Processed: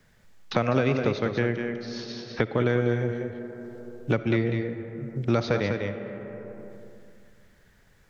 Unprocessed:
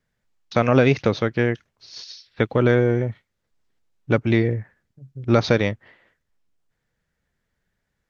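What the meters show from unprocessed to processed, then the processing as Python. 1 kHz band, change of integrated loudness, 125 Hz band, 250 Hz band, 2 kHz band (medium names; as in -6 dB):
-5.0 dB, -6.5 dB, -5.0 dB, -4.5 dB, -5.0 dB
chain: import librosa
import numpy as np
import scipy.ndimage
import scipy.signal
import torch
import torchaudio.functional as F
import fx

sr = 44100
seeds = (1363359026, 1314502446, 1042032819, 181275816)

p1 = x + fx.echo_single(x, sr, ms=198, db=-7.5, dry=0)
p2 = fx.rev_freeverb(p1, sr, rt60_s=1.9, hf_ratio=0.45, predelay_ms=15, drr_db=12.0)
p3 = fx.band_squash(p2, sr, depth_pct=70)
y = F.gain(torch.from_numpy(p3), -6.0).numpy()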